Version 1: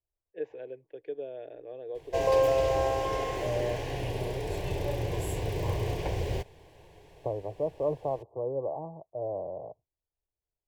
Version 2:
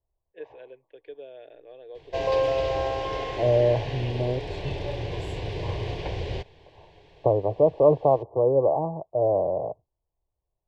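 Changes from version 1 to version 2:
first voice: add low-shelf EQ 460 Hz −9.5 dB
second voice +11.5 dB
master: add low-pass with resonance 4,000 Hz, resonance Q 1.7

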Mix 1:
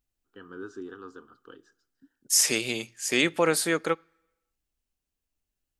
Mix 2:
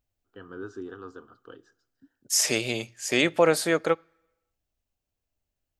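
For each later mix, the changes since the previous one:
master: add graphic EQ with 15 bands 100 Hz +9 dB, 630 Hz +8 dB, 10,000 Hz −5 dB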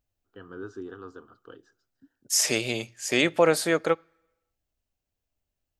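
first voice: send off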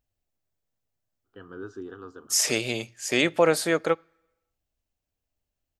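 first voice: entry +1.00 s

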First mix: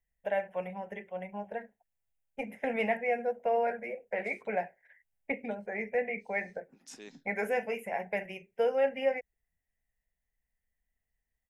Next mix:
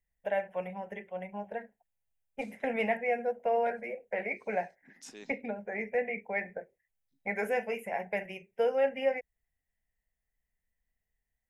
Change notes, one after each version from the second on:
second voice: entry −1.85 s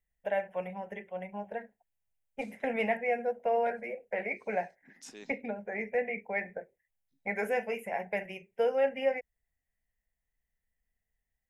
nothing changed

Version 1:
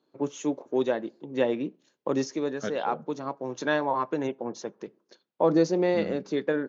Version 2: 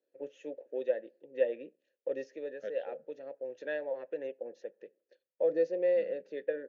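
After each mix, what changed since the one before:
master: add formant filter e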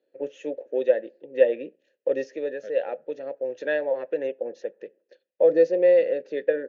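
first voice +10.5 dB

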